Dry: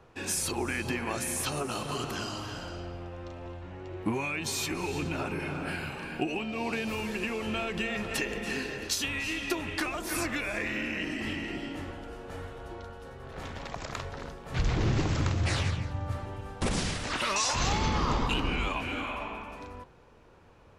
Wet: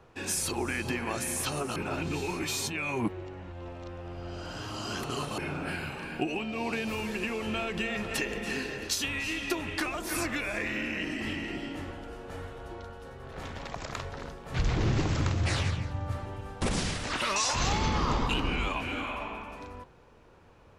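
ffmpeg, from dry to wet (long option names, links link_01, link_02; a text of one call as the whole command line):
ffmpeg -i in.wav -filter_complex "[0:a]asplit=3[link_01][link_02][link_03];[link_01]atrim=end=1.762[link_04];[link_02]atrim=start=1.758:end=5.382,asetpts=PTS-STARTPTS,areverse[link_05];[link_03]atrim=start=5.378[link_06];[link_04][link_05]acrossfade=duration=0.004:curve1=hsin:curve2=hsin[link_07];[link_07][link_06]acrossfade=duration=0.004:curve1=hsin:curve2=hsin" out.wav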